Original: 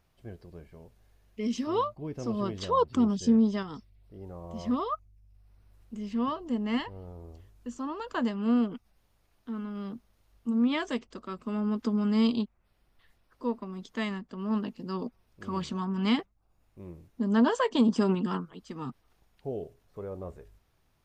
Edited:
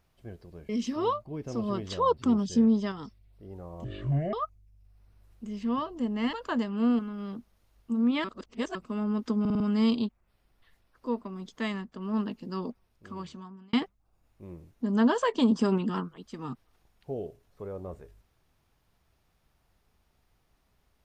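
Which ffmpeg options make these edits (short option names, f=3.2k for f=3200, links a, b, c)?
-filter_complex "[0:a]asplit=13[a][b][c][d][e][f][g][h][i][j][k][l][m];[a]atrim=end=0.692[n];[b]atrim=start=1.398:end=4.554[o];[c]atrim=start=4.55:end=4.83,asetpts=PTS-STARTPTS,asetrate=25137,aresample=44100,atrim=end_sample=21663,asetpts=PTS-STARTPTS[p];[d]atrim=start=4.826:end=6.832[q];[e]atrim=start=7.988:end=8.652[r];[f]atrim=start=9.558:end=10.812[s];[g]atrim=start=10.808:end=11.322,asetpts=PTS-STARTPTS,areverse[t];[h]atrim=start=11.318:end=12.022[u];[i]atrim=start=11.968:end=12.022[v];[j]atrim=start=11.968:end=12.022[w];[k]atrim=start=11.968:end=12.022[x];[l]atrim=start=11.968:end=16.1,asetpts=PTS-STARTPTS,afade=t=out:st=2.972:d=1.16[y];[m]atrim=start=16.1,asetpts=PTS-STARTPTS,afade=t=in:d=0.004:c=hsin[z];[n][o]acrossfade=d=0.004:c1=hsin:c2=hsin[aa];[aa][p]acrossfade=d=0.004:c1=hsin:c2=hsin[ab];[ab][q]acrossfade=d=0.004:c1=hsin:c2=hsin[ac];[ac][r]acrossfade=d=0.004:c1=hsin:c2=hsin[ad];[ad][s]acrossfade=d=0.004:c1=hsin:c2=hsin[ae];[ae][t]acrossfade=d=0.004:c1=hsin:c2=hsin[af];[af][u]acrossfade=d=0.004:c1=hsin:c2=hsin[ag];[ag][v]acrossfade=d=0.004:c1=hsin:c2=hsin[ah];[ah][w]acrossfade=d=0.004:c1=hsin:c2=hsin[ai];[ai][x]acrossfade=d=0.004:c1=hsin:c2=hsin[aj];[y][z]concat=n=2:v=0:a=1[ak];[aj][ak]acrossfade=d=0.004:c1=hsin:c2=hsin"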